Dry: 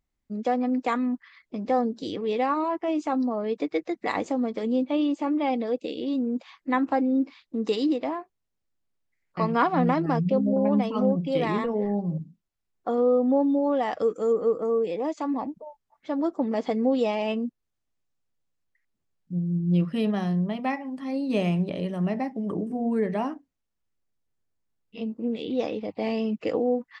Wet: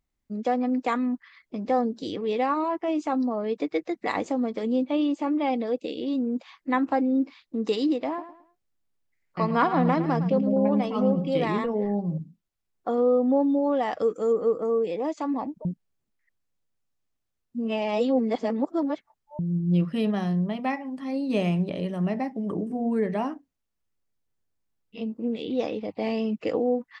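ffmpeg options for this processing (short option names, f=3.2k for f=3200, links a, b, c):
-filter_complex "[0:a]asettb=1/sr,asplit=3[a][b][c];[a]atrim=end=8.074[d];[b]atrim=start=8.07:end=11.44,asetpts=PTS-STARTPTS,afade=t=in:d=0.004:c=qsin,afade=t=out:st=3.366:d=0.004:c=qsin,aecho=1:1:109|218|327:0.237|0.0735|0.0228,atrim=end_sample=148617[e];[c]atrim=start=11.436[f];[d][e]acrossfade=d=0.004:c1=hsin:c2=qsin[g];[g][f]acrossfade=d=0.004:c1=qsin:c2=hsin,asplit=3[h][i][j];[h]atrim=end=15.652[k];[i]atrim=start=15.648:end=19.392,asetpts=PTS-STARTPTS,areverse[l];[j]atrim=start=19.388[m];[k][l]acrossfade=d=0.004:c1=hsin:c2=hsin[n];[n][m]acrossfade=d=0.004:c1=hsin:c2=hsin"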